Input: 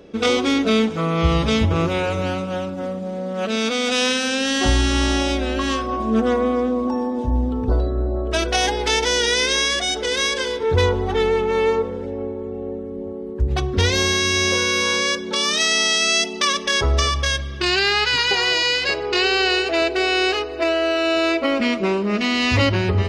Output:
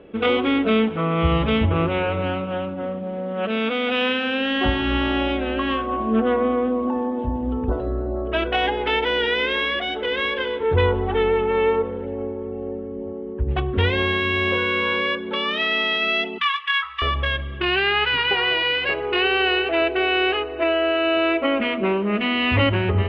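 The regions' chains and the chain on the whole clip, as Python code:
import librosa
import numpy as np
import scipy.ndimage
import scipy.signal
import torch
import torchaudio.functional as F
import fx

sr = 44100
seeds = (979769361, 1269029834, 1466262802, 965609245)

y = fx.chain(x, sr, fx.ellip_highpass(hz=1100.0, order=4, stop_db=40),
    fx.doubler(ms=18.0, db=-8.0),
    fx.resample_bad(factor=4, down='filtered', up='zero_stuff'), at=(16.38, 17.02))
y = scipy.signal.sosfilt(scipy.signal.ellip(4, 1.0, 80, 3100.0, 'lowpass', fs=sr, output='sos'), y)
y = fx.hum_notches(y, sr, base_hz=60, count=4)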